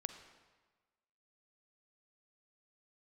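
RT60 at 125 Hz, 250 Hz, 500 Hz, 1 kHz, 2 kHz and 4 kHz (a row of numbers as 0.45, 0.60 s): 1.3, 1.3, 1.3, 1.4, 1.2, 1.1 s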